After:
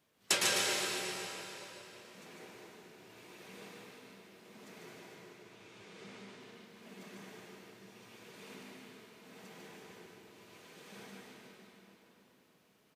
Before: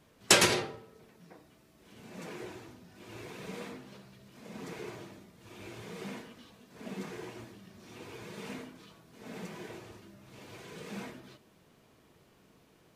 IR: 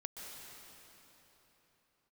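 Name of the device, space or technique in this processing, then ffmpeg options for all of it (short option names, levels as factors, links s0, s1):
PA in a hall: -filter_complex "[0:a]asettb=1/sr,asplit=3[s0][s1][s2];[s0]atrim=end=5.004[s3];[s1]atrim=start=5:end=6.4,asetpts=PTS-STARTPTS,afade=t=in:d=0.004:c=qsin,afade=t=out:st=1.396:d=0.004:c=qsin,lowpass=7400[s4];[s2]atrim=start=6.396[s5];[s3][s4]acrossfade=d=0.004:c1=hsin:c2=qsin[s6];[s6][s5]acrossfade=d=0.004:c1=qsin:c2=hsin,highpass=f=170:p=1,equalizer=f=3300:t=o:w=2.5:g=4,aecho=1:1:148:0.631[s7];[1:a]atrim=start_sample=2205[s8];[s7][s8]afir=irnorm=-1:irlink=0,highshelf=f=11000:g=9.5,volume=0.422"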